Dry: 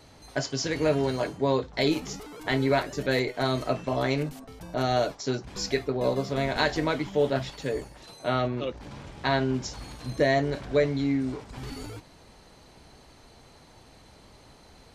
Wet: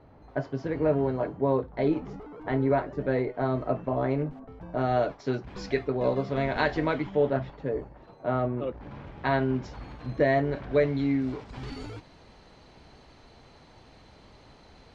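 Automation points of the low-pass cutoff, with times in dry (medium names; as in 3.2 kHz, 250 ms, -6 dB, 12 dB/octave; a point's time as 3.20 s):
4.39 s 1.2 kHz
5.38 s 2.6 kHz
7.00 s 2.6 kHz
7.55 s 1.2 kHz
8.55 s 1.2 kHz
8.96 s 2.2 kHz
10.51 s 2.2 kHz
11.47 s 4.5 kHz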